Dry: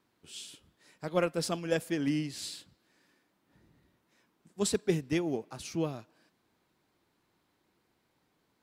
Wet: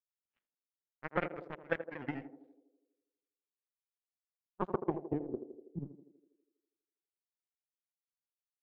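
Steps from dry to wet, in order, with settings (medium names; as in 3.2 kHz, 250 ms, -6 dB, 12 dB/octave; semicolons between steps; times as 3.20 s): pitch shift switched off and on -2 st, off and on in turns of 65 ms; high-pass 52 Hz; treble shelf 5.9 kHz -8 dB; transient shaper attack +3 dB, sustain -2 dB; in parallel at -2 dB: peak limiter -21 dBFS, peak gain reduction 10 dB; on the sum: saturation -13.5 dBFS, distortion -21 dB; power-law waveshaper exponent 3; low-pass sweep 1.9 kHz -> 210 Hz, 4.39–5.71 s; on a send: band-passed feedback delay 81 ms, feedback 68%, band-pass 420 Hz, level -8.5 dB; on the sum: tape noise reduction on one side only decoder only; trim -2.5 dB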